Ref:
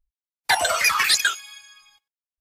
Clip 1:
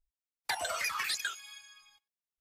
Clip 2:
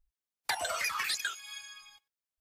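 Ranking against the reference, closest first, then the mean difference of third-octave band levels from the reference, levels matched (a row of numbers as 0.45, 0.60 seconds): 1, 2; 2.5, 4.0 decibels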